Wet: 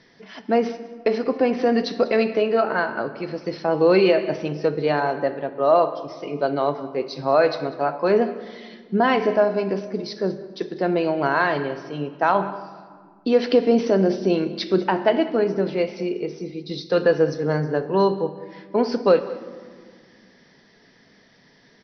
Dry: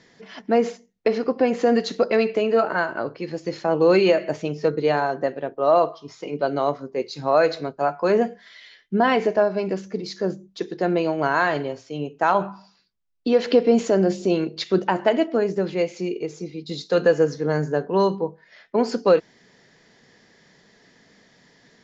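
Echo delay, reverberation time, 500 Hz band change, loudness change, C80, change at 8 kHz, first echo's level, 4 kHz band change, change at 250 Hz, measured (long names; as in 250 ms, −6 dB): 194 ms, 1.8 s, +0.5 dB, +0.5 dB, 13.0 dB, can't be measured, −19.0 dB, +0.5 dB, +0.5 dB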